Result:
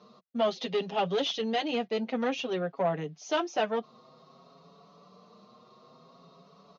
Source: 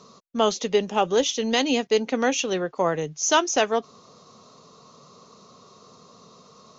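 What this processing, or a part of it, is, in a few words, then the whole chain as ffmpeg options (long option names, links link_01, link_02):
barber-pole flanger into a guitar amplifier: -filter_complex "[0:a]asettb=1/sr,asplit=3[link_01][link_02][link_03];[link_01]atrim=end=0.574[link_04];[link_02]atrim=start=0.57:end=1.41,asetpts=PTS-STARTPTS,afade=type=in:duration=0.004:curve=qsin,afade=type=out:start_time=0.836:duration=0.004:curve=qsin,equalizer=frequency=4000:width_type=o:width=1.4:gain=7.5[link_05];[link_03]atrim=start=1.406[link_06];[link_04][link_05]acrossfade=duration=0.004:curve1=hsin:curve2=qsin[link_07];[link_07][link_06]acrossfade=duration=0.004:curve1=qsin:curve2=hsin,asplit=2[link_08][link_09];[link_09]adelay=6.2,afreqshift=0.55[link_10];[link_08][link_10]amix=inputs=2:normalize=1,asoftclip=type=tanh:threshold=-19.5dB,highpass=84,equalizer=frequency=100:width_type=q:width=4:gain=-8,equalizer=frequency=180:width_type=q:width=4:gain=6,equalizer=frequency=690:width_type=q:width=4:gain=7,lowpass=frequency=4300:width=0.5412,lowpass=frequency=4300:width=1.3066,volume=-3.5dB"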